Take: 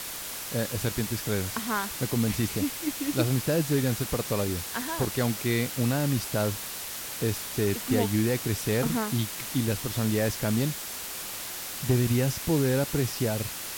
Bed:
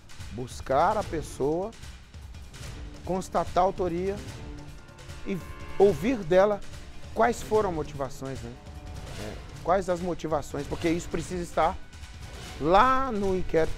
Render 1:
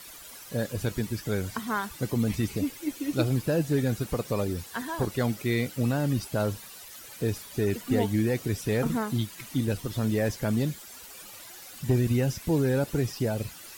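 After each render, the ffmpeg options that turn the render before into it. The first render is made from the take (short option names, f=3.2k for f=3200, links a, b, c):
-af "afftdn=nr=13:nf=-37"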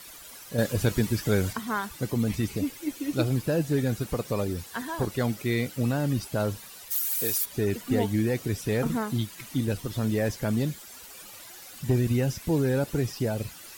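-filter_complex "[0:a]asettb=1/sr,asplit=3[a][b][c];[a]atrim=end=0.584[d];[b]atrim=start=0.58:end=1.53,asetpts=PTS-STARTPTS,afade=t=in:d=0.004:c=qsin,afade=t=out:st=0.946:d=0.004:c=qsin,acontrast=29[e];[c]atrim=start=1.526[f];[d][e]acrossfade=d=0.004:c1=hsin:c2=qsin[g];[g][f]acrossfade=d=0.004:c1=qsin:c2=hsin,asplit=3[h][i][j];[h]afade=t=out:st=6.9:d=0.02[k];[i]aemphasis=mode=production:type=riaa,afade=t=in:st=6.9:d=0.02,afade=t=out:st=7.44:d=0.02[l];[j]afade=t=in:st=7.44:d=0.02[m];[k][l][m]amix=inputs=3:normalize=0"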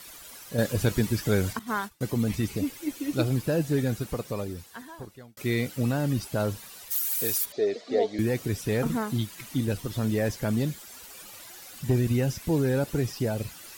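-filter_complex "[0:a]asettb=1/sr,asplit=3[a][b][c];[a]atrim=end=1.594[d];[b]atrim=start=1.59:end=2.01,asetpts=PTS-STARTPTS,afade=t=in:d=0.004:c=qsin,afade=t=out:st=0.416:d=0.004:c=qsin,agate=range=-33dB:threshold=-32dB:ratio=3:release=100:detection=peak[e];[c]atrim=start=2.006[f];[d][e]acrossfade=d=0.004:c1=hsin:c2=qsin[g];[g][f]acrossfade=d=0.004:c1=qsin:c2=hsin,asettb=1/sr,asplit=3[h][i][j];[h]atrim=end=7.524[k];[i]atrim=start=7.52:end=8.19,asetpts=PTS-STARTPTS,afade=t=in:d=0.004:c=qsin,afade=t=out:st=0.666:d=0.004:c=qsin,highpass=430,equalizer=f=440:t=q:w=4:g=8,equalizer=f=630:t=q:w=4:g=10,equalizer=f=950:t=q:w=4:g=-10,equalizer=f=1.5k:t=q:w=4:g=-9,equalizer=f=2.8k:t=q:w=4:g=-9,equalizer=f=4k:t=q:w=4:g=5,lowpass=f=5.5k:w=0.5412,lowpass=f=5.5k:w=1.3066[l];[j]atrim=start=8.186[m];[k][l]acrossfade=d=0.004:c1=hsin:c2=qsin[n];[n][m]acrossfade=d=0.004:c1=qsin:c2=hsin,asplit=2[o][p];[o]atrim=end=5.37,asetpts=PTS-STARTPTS,afade=t=out:st=3.81:d=1.56[q];[p]atrim=start=5.37,asetpts=PTS-STARTPTS,afade=t=in:d=0.004:c=hsin[r];[q][r]concat=n=2:v=0:a=1"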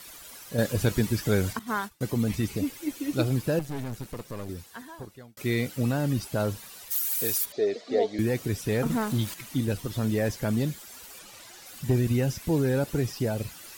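-filter_complex "[0:a]asettb=1/sr,asplit=3[a][b][c];[a]atrim=end=3.594[d];[b]atrim=start=3.59:end=4.49,asetpts=PTS-STARTPTS,afade=t=in:d=0.004:c=qsin,afade=t=out:st=0.896:d=0.004:c=qsin,aeval=exprs='(tanh(35.5*val(0)+0.75)-tanh(0.75))/35.5':c=same[e];[c]atrim=start=4.486[f];[d][e]acrossfade=d=0.004:c1=hsin:c2=qsin[g];[g][f]acrossfade=d=0.004:c1=qsin:c2=hsin,asettb=1/sr,asplit=3[h][i][j];[h]atrim=end=8.904[k];[i]atrim=start=8.9:end=9.34,asetpts=PTS-STARTPTS,afade=t=in:d=0.004:c=qsin,afade=t=out:st=0.436:d=0.004:c=qsin,aeval=exprs='val(0)+0.5*0.0178*sgn(val(0))':c=same[l];[j]atrim=start=9.336[m];[k][l]acrossfade=d=0.004:c1=hsin:c2=qsin[n];[n][m]acrossfade=d=0.004:c1=qsin:c2=hsin,asettb=1/sr,asplit=3[o][p][q];[o]atrim=end=11.194[r];[p]atrim=start=11.19:end=11.66,asetpts=PTS-STARTPTS,afade=t=in:d=0.004:c=qsin,afade=t=out:st=0.466:d=0.004:c=qsin,acrossover=split=9400[s][t];[t]acompressor=threshold=-56dB:ratio=4:attack=1:release=60[u];[s][u]amix=inputs=2:normalize=0[v];[q]atrim=start=11.656[w];[r][v]acrossfade=d=0.004:c1=hsin:c2=qsin[x];[x][w]acrossfade=d=0.004:c1=qsin:c2=hsin"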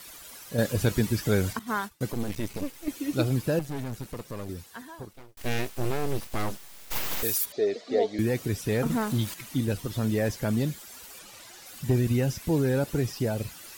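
-filter_complex "[0:a]asettb=1/sr,asplit=3[a][b][c];[a]atrim=end=2.124[d];[b]atrim=start=2.12:end=2.88,asetpts=PTS-STARTPTS,afade=t=in:d=0.004:c=qsin,afade=t=out:st=0.756:d=0.004:c=qsin,aeval=exprs='max(val(0),0)':c=same[e];[c]atrim=start=2.876[f];[d][e]acrossfade=d=0.004:c1=hsin:c2=qsin[g];[g][f]acrossfade=d=0.004:c1=qsin:c2=hsin,asettb=1/sr,asplit=3[h][i][j];[h]atrim=end=5.134[k];[i]atrim=start=5.13:end=7.23,asetpts=PTS-STARTPTS,afade=t=in:d=0.004:c=qsin,afade=t=out:st=2.096:d=0.004:c=qsin,aeval=exprs='abs(val(0))':c=same[l];[j]atrim=start=7.226[m];[k][l]acrossfade=d=0.004:c1=hsin:c2=qsin[n];[n][m]acrossfade=d=0.004:c1=qsin:c2=hsin"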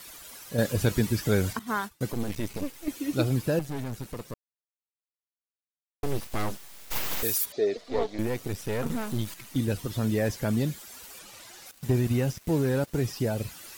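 -filter_complex "[0:a]asettb=1/sr,asplit=3[a][b][c];[a]atrim=end=7.774[d];[b]atrim=start=7.77:end=9.56,asetpts=PTS-STARTPTS,afade=t=in:d=0.004:c=qsin,afade=t=out:st=1.786:d=0.004:c=qsin,aeval=exprs='if(lt(val(0),0),0.251*val(0),val(0))':c=same[e];[c]atrim=start=9.556[f];[d][e]acrossfade=d=0.004:c1=hsin:c2=qsin[g];[g][f]acrossfade=d=0.004:c1=qsin:c2=hsin,asettb=1/sr,asplit=3[h][i][j];[h]atrim=end=11.714[k];[i]atrim=start=11.71:end=13.01,asetpts=PTS-STARTPTS,afade=t=in:d=0.004:c=qsin,afade=t=out:st=1.296:d=0.004:c=qsin,aeval=exprs='sgn(val(0))*max(abs(val(0))-0.0075,0)':c=same[l];[j]atrim=start=13.006[m];[k][l]acrossfade=d=0.004:c1=hsin:c2=qsin[n];[n][m]acrossfade=d=0.004:c1=qsin:c2=hsin,asplit=3[o][p][q];[o]atrim=end=4.34,asetpts=PTS-STARTPTS,afade=t=out:st=4.336:d=0.004:c=hsin[r];[p]atrim=start=4.34:end=6.03,asetpts=PTS-STARTPTS,volume=0[s];[q]atrim=start=6.03,asetpts=PTS-STARTPTS,afade=t=in:d=0.004:c=hsin[t];[r][s][t]concat=n=3:v=0:a=1"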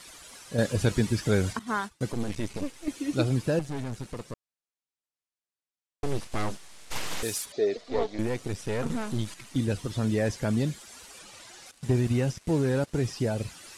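-af "lowpass=f=10k:w=0.5412,lowpass=f=10k:w=1.3066"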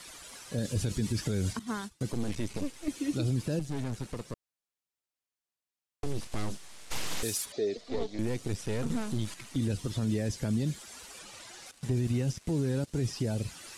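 -filter_complex "[0:a]acrossover=split=370|3000[a][b][c];[b]acompressor=threshold=-41dB:ratio=3[d];[a][d][c]amix=inputs=3:normalize=0,alimiter=limit=-21.5dB:level=0:latency=1:release=29"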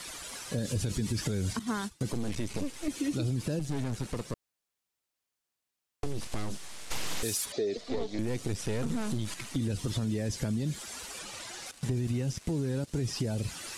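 -filter_complex "[0:a]asplit=2[a][b];[b]alimiter=level_in=6dB:limit=-24dB:level=0:latency=1:release=23,volume=-6dB,volume=-1dB[c];[a][c]amix=inputs=2:normalize=0,acompressor=threshold=-27dB:ratio=6"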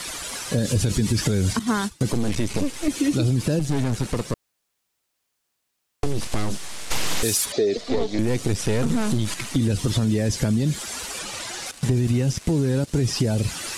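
-af "volume=10dB"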